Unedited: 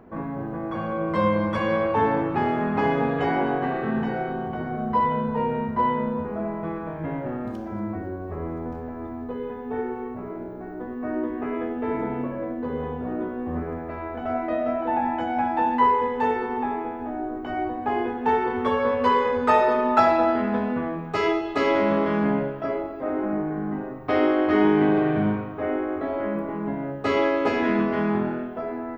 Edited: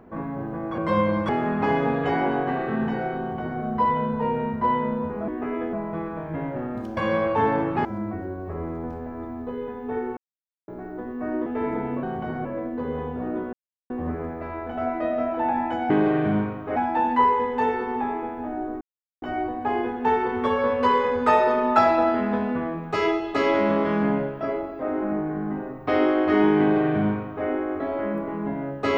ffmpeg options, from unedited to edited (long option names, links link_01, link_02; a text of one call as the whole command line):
ffmpeg -i in.wav -filter_complex "[0:a]asplit=16[link_01][link_02][link_03][link_04][link_05][link_06][link_07][link_08][link_09][link_10][link_11][link_12][link_13][link_14][link_15][link_16];[link_01]atrim=end=0.782[link_17];[link_02]atrim=start=1.048:end=1.562[link_18];[link_03]atrim=start=2.438:end=6.432[link_19];[link_04]atrim=start=11.278:end=11.732[link_20];[link_05]atrim=start=6.428:end=7.672[link_21];[link_06]atrim=start=1.558:end=2.442[link_22];[link_07]atrim=start=7.668:end=9.99,asetpts=PTS-STARTPTS,afade=type=out:start_time=2.318:duration=0.004:curve=hsin[link_23];[link_08]atrim=start=9.99:end=10.5,asetpts=PTS-STARTPTS,volume=0[link_24];[link_09]atrim=start=10.5:end=11.282,asetpts=PTS-STARTPTS,afade=type=in:duration=0.004:curve=hsin[link_25];[link_10]atrim=start=11.728:end=12.302[link_26];[link_11]atrim=start=4.338:end=4.762[link_27];[link_12]atrim=start=12.298:end=13.38,asetpts=PTS-STARTPTS,afade=type=out:start_time=1.078:duration=0.004:curve=hsin,apad=pad_dur=0.37[link_28];[link_13]atrim=start=13.38:end=15.382,asetpts=PTS-STARTPTS,afade=type=in:duration=0.004:curve=hsin[link_29];[link_14]atrim=start=24.808:end=25.672[link_30];[link_15]atrim=start=15.378:end=17.43,asetpts=PTS-STARTPTS,afade=type=out:start_time=2.048:duration=0.004:curve=hsin,apad=pad_dur=0.41[link_31];[link_16]atrim=start=17.43,asetpts=PTS-STARTPTS,afade=type=in:duration=0.004:curve=hsin[link_32];[link_17][link_18]acrossfade=duration=0.004:curve1=hsin:curve2=hsin[link_33];[link_33][link_19]acrossfade=duration=0.004:curve1=hsin:curve2=hsin[link_34];[link_34][link_20]acrossfade=duration=0.004:curve1=hsin:curve2=hsin[link_35];[link_35][link_21]acrossfade=duration=0.004:curve1=hsin:curve2=hsin[link_36];[link_36][link_22]acrossfade=duration=0.004:curve1=hsin:curve2=hsin[link_37];[link_23][link_24][link_25]concat=n=3:v=0:a=1[link_38];[link_37][link_38]acrossfade=duration=0.004:curve1=hsin:curve2=hsin[link_39];[link_39][link_26]acrossfade=duration=0.004:curve1=hsin:curve2=hsin[link_40];[link_40][link_27]acrossfade=duration=0.004:curve1=hsin:curve2=hsin[link_41];[link_28][link_29]concat=n=2:v=0:a=1[link_42];[link_41][link_42]acrossfade=duration=0.004:curve1=hsin:curve2=hsin[link_43];[link_43][link_30]acrossfade=duration=0.004:curve1=hsin:curve2=hsin[link_44];[link_31][link_32]concat=n=2:v=0:a=1[link_45];[link_44][link_45]acrossfade=duration=0.004:curve1=hsin:curve2=hsin" out.wav